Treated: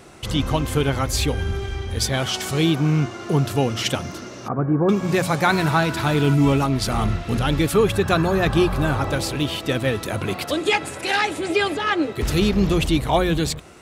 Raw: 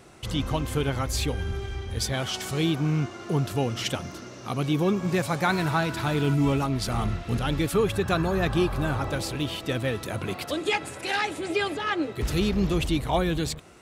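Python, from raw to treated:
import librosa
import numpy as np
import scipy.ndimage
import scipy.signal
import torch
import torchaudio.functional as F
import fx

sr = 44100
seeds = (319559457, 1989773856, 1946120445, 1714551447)

y = fx.ellip_lowpass(x, sr, hz=1600.0, order=4, stop_db=60, at=(4.48, 4.89))
y = fx.hum_notches(y, sr, base_hz=60, count=3)
y = y * 10.0 ** (6.0 / 20.0)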